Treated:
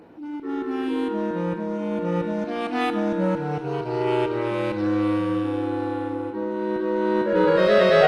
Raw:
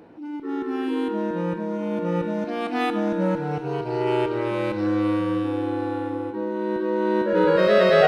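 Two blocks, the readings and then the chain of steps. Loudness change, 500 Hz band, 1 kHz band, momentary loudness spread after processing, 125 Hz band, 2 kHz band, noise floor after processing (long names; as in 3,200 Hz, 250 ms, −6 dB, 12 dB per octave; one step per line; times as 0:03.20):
0.0 dB, 0.0 dB, 0.0 dB, 9 LU, 0.0 dB, 0.0 dB, −33 dBFS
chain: MP2 64 kbit/s 48,000 Hz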